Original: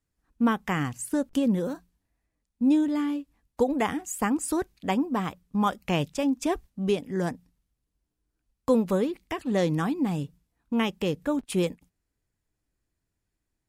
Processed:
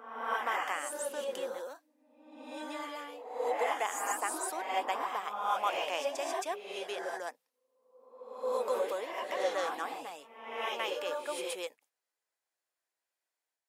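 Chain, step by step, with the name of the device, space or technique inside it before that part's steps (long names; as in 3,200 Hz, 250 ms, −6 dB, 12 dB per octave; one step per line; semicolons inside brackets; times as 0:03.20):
ghost voice (reversed playback; convolution reverb RT60 1.1 s, pre-delay 115 ms, DRR −2.5 dB; reversed playback; high-pass filter 550 Hz 24 dB per octave)
level −5.5 dB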